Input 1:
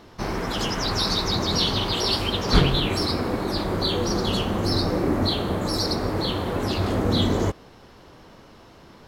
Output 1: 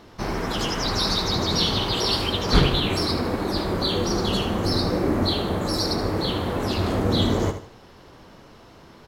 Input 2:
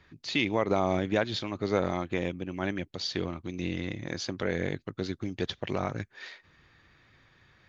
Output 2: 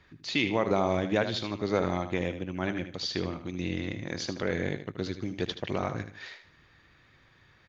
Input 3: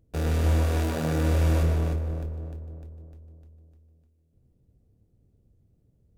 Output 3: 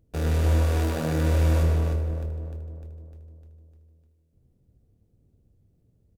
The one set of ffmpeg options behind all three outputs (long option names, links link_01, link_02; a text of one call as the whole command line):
ffmpeg -i in.wav -af "aecho=1:1:77|154|231|308:0.316|0.104|0.0344|0.0114" out.wav